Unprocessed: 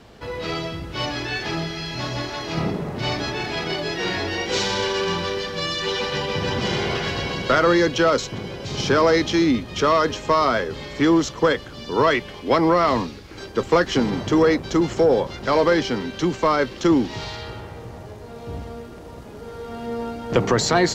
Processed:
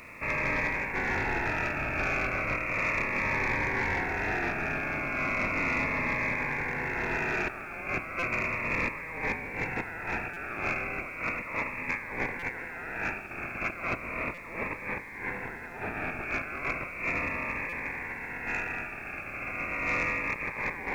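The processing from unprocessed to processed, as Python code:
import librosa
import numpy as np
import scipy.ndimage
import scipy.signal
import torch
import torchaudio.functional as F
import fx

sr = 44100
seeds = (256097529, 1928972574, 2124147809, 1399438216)

y = fx.spec_flatten(x, sr, power=0.32)
y = fx.freq_invert(y, sr, carrier_hz=2600)
y = fx.echo_feedback(y, sr, ms=72, feedback_pct=24, wet_db=-9.0)
y = fx.over_compress(y, sr, threshold_db=-30.0, ratio=-1.0)
y = 10.0 ** (-17.5 / 20.0) * np.tanh(y / 10.0 ** (-17.5 / 20.0))
y = fx.air_absorb(y, sr, metres=370.0, at=(13.95, 16.22))
y = fx.dmg_noise_colour(y, sr, seeds[0], colour='pink', level_db=-60.0)
y = fx.buffer_glitch(y, sr, at_s=(8.19, 10.33, 12.39, 14.34, 17.69), block=256, repeats=5)
y = fx.notch_cascade(y, sr, direction='falling', hz=0.35)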